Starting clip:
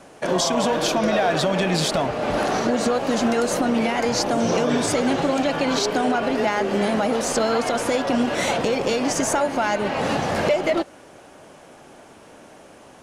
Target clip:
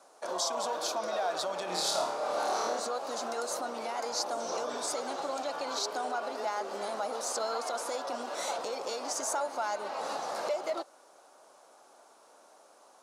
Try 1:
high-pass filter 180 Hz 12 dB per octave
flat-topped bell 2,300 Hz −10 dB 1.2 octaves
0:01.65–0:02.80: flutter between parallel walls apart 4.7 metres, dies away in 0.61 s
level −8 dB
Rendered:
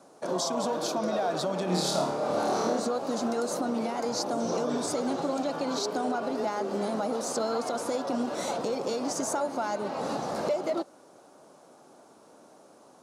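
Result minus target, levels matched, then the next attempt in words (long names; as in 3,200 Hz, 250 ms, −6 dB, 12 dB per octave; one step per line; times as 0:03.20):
250 Hz band +11.5 dB
high-pass filter 660 Hz 12 dB per octave
flat-topped bell 2,300 Hz −10 dB 1.2 octaves
0:01.65–0:02.80: flutter between parallel walls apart 4.7 metres, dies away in 0.61 s
level −8 dB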